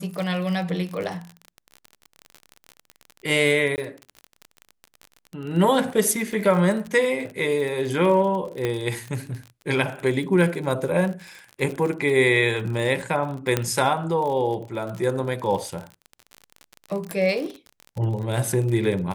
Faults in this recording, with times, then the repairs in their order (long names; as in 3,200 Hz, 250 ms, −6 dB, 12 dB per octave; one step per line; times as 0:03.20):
surface crackle 40 per second −29 dBFS
0:03.76–0:03.78: drop-out 19 ms
0:08.65: click −12 dBFS
0:13.57: click −6 dBFS
0:17.11: click −12 dBFS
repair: click removal
repair the gap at 0:03.76, 19 ms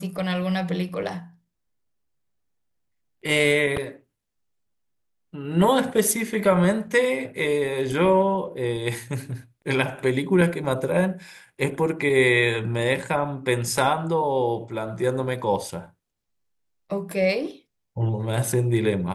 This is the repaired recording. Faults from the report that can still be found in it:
0:17.11: click